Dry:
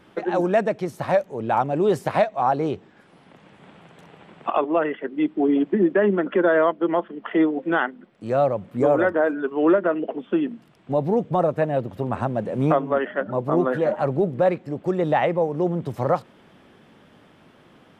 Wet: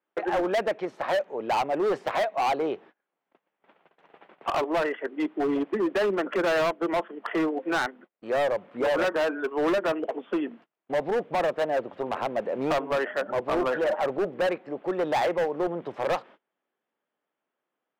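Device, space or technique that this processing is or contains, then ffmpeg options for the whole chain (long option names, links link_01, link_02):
walkie-talkie: -af "highpass=440,lowpass=2700,asoftclip=type=hard:threshold=-23dB,agate=range=-30dB:threshold=-49dB:ratio=16:detection=peak,volume=1.5dB"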